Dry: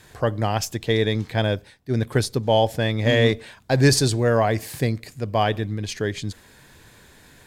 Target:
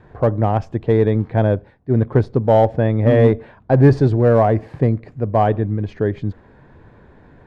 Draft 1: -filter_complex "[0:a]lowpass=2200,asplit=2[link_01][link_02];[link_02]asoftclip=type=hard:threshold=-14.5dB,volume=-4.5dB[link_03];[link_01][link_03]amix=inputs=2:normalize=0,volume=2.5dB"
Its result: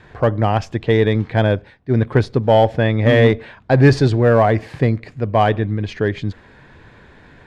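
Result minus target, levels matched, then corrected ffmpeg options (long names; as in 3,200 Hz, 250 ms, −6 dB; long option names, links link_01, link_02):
2,000 Hz band +8.0 dB
-filter_complex "[0:a]lowpass=1000,asplit=2[link_01][link_02];[link_02]asoftclip=type=hard:threshold=-14.5dB,volume=-4.5dB[link_03];[link_01][link_03]amix=inputs=2:normalize=0,volume=2.5dB"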